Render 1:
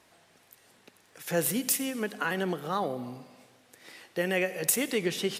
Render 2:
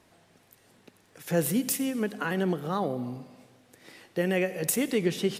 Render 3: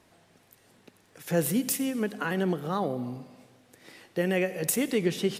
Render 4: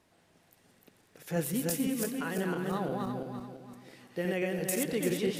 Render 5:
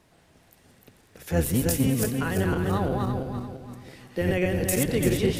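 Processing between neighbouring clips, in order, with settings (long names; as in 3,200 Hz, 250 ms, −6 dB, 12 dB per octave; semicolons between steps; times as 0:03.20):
low-shelf EQ 430 Hz +9.5 dB; level −2.5 dB
no processing that can be heard
feedback delay that plays each chunk backwards 170 ms, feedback 59%, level −2.5 dB; level −6.5 dB
sub-octave generator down 1 octave, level 0 dB; level +6 dB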